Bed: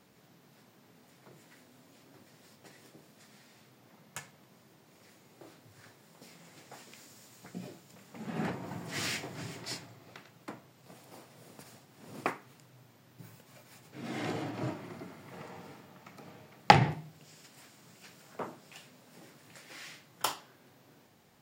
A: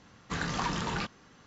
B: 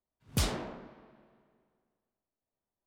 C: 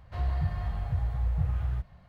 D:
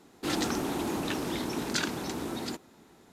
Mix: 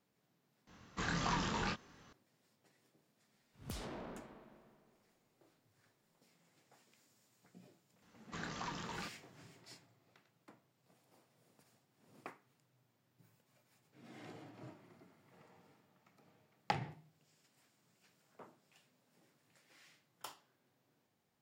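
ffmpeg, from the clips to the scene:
ffmpeg -i bed.wav -i cue0.wav -i cue1.wav -filter_complex "[1:a]asplit=2[link_01][link_02];[0:a]volume=-17.5dB[link_03];[link_01]flanger=delay=22.5:depth=5:speed=1.7[link_04];[2:a]acompressor=threshold=-42dB:ratio=6:attack=3.2:release=140:knee=1:detection=peak[link_05];[link_02]lowshelf=frequency=100:gain=-8[link_06];[link_04]atrim=end=1.46,asetpts=PTS-STARTPTS,volume=-1.5dB,afade=type=in:duration=0.004:curve=hsin,afade=type=out:start_time=1.456:duration=0.004:curve=hsin,adelay=670[link_07];[link_05]atrim=end=2.86,asetpts=PTS-STARTPTS,volume=-0.5dB,afade=type=in:duration=0.004:curve=hsin,afade=type=out:start_time=2.856:duration=0.004:curve=hsin,adelay=146853S[link_08];[link_06]atrim=end=1.46,asetpts=PTS-STARTPTS,volume=-11.5dB,afade=type=in:duration=0.004:curve=hsin,afade=type=out:start_time=1.456:duration=0.004:curve=hsin,adelay=353682S[link_09];[link_03][link_07][link_08][link_09]amix=inputs=4:normalize=0" out.wav

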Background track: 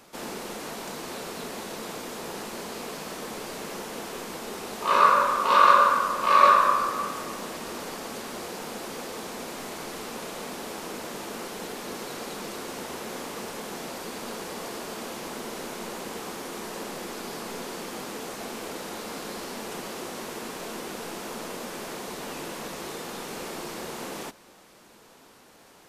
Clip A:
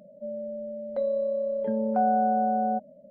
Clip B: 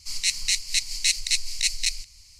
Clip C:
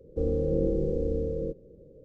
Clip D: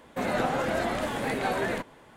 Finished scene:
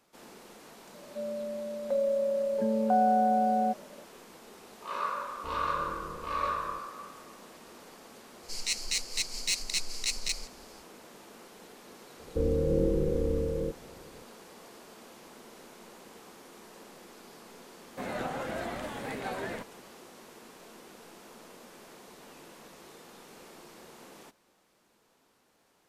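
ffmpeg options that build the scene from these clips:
ffmpeg -i bed.wav -i cue0.wav -i cue1.wav -i cue2.wav -i cue3.wav -filter_complex "[3:a]asplit=2[link_01][link_02];[0:a]volume=-15dB[link_03];[2:a]asoftclip=type=tanh:threshold=-14dB[link_04];[1:a]atrim=end=3.1,asetpts=PTS-STARTPTS,volume=-1dB,afade=type=in:duration=0.004:curve=hsin,afade=type=out:start_time=3.096:duration=0.004:curve=hsin,adelay=940[link_05];[link_01]atrim=end=2.04,asetpts=PTS-STARTPTS,volume=-17dB,afade=type=in:duration=0.004:curve=hsin,afade=type=out:start_time=2.036:duration=0.004:curve=hsin,adelay=5270[link_06];[link_04]atrim=end=2.39,asetpts=PTS-STARTPTS,volume=-6dB,afade=type=in:duration=0.004:curve=hsin,afade=type=out:start_time=2.386:duration=0.004:curve=hsin,adelay=8430[link_07];[link_02]atrim=end=2.04,asetpts=PTS-STARTPTS,volume=-0.5dB,afade=type=in:duration=0.004:curve=hsin,afade=type=out:start_time=2.036:duration=0.004:curve=hsin,adelay=12190[link_08];[4:a]atrim=end=2.16,asetpts=PTS-STARTPTS,volume=-8dB,afade=type=in:duration=0.004:curve=hsin,afade=type=out:start_time=2.156:duration=0.004:curve=hsin,adelay=17810[link_09];[link_03][link_05][link_06][link_07][link_08][link_09]amix=inputs=6:normalize=0" out.wav

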